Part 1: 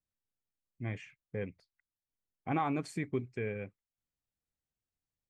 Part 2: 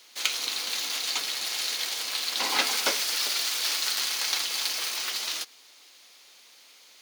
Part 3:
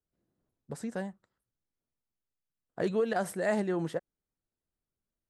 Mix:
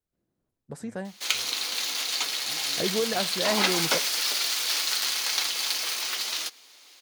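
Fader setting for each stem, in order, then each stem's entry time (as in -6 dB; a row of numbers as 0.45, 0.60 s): -17.5, +1.0, +1.0 dB; 0.00, 1.05, 0.00 s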